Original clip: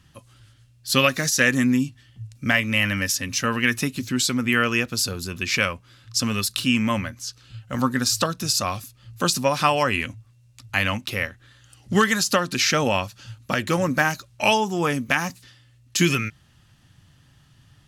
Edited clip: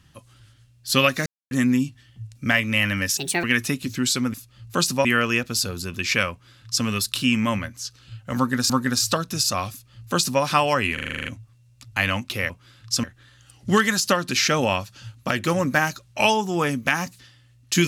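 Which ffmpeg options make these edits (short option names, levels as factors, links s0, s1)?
-filter_complex "[0:a]asplit=18[s0][s1][s2][s3][s4][s5][s6][s7][s8][s9][s10][s11][s12][s13][s14][s15][s16][s17];[s0]atrim=end=1.26,asetpts=PTS-STARTPTS,afade=t=out:st=1.256:d=0.004:c=hsin[s18];[s1]atrim=start=1.26:end=1.51,asetpts=PTS-STARTPTS,volume=0[s19];[s2]atrim=start=1.51:end=3.174,asetpts=PTS-STARTPTS,afade=t=in:d=0.004:c=hsin[s20];[s3]atrim=start=3.17:end=3.57,asetpts=PTS-STARTPTS,asetrate=66150,aresample=44100[s21];[s4]atrim=start=3.566:end=4.472[s22];[s5]atrim=start=8.798:end=9.512[s23];[s6]atrim=start=4.468:end=8.122[s24];[s7]atrim=start=7.788:end=10.072[s25];[s8]atrim=start=10.028:end=10.072[s26];[s9]atrim=start=10.028:end=10.072[s27];[s10]atrim=start=10.028:end=10.072[s28];[s11]atrim=start=10.028:end=10.072[s29];[s12]atrim=start=10.028:end=10.072[s30];[s13]atrim=start=10.028:end=10.072[s31];[s14]atrim=start=10.028:end=10.072[s32];[s15]atrim=start=10.028:end=11.272[s33];[s16]atrim=start=5.728:end=6.272[s34];[s17]atrim=start=11.268[s35];[s18][s19][s20]concat=n=3:v=0:a=1[s36];[s36][s21]acrossfade=d=0.004:c1=hsin:c2=hsin[s37];[s37][s22]acrossfade=d=0.004:c1=hsin:c2=hsin[s38];[s38][s23]acrossfade=d=0.004:c1=hsin:c2=hsin[s39];[s39][s24]acrossfade=d=0.004:c1=hsin:c2=hsin[s40];[s40][s25]acrossfade=d=0.004:c1=hsin:c2=hsin[s41];[s41][s26]acrossfade=d=0.004:c1=hsin:c2=hsin[s42];[s42][s27]acrossfade=d=0.004:c1=hsin:c2=hsin[s43];[s43][s28]acrossfade=d=0.004:c1=hsin:c2=hsin[s44];[s44][s29]acrossfade=d=0.004:c1=hsin:c2=hsin[s45];[s45][s30]acrossfade=d=0.004:c1=hsin:c2=hsin[s46];[s46][s31]acrossfade=d=0.004:c1=hsin:c2=hsin[s47];[s47][s32]acrossfade=d=0.004:c1=hsin:c2=hsin[s48];[s48][s33]acrossfade=d=0.004:c1=hsin:c2=hsin[s49];[s49][s34]acrossfade=d=0.004:c1=hsin:c2=hsin[s50];[s50][s35]acrossfade=d=0.004:c1=hsin:c2=hsin"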